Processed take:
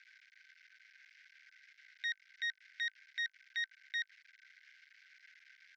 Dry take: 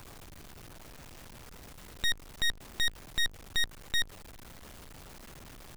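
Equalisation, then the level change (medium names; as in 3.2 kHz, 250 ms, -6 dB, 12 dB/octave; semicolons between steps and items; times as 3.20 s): rippled Chebyshev high-pass 1.5 kHz, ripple 9 dB; distance through air 170 m; tape spacing loss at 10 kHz 27 dB; +10.0 dB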